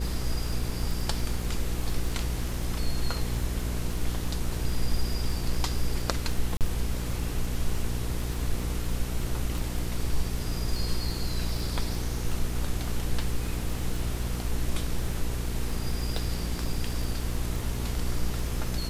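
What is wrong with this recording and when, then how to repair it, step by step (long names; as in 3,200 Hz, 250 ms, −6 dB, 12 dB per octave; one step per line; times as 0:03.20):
surface crackle 27 per second −32 dBFS
mains hum 60 Hz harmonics 8 −32 dBFS
0:06.57–0:06.61: drop-out 38 ms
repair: click removal
hum removal 60 Hz, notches 8
repair the gap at 0:06.57, 38 ms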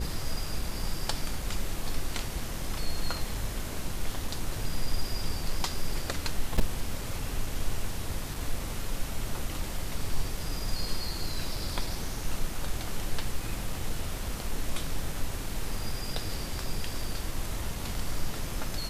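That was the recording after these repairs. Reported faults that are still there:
none of them is left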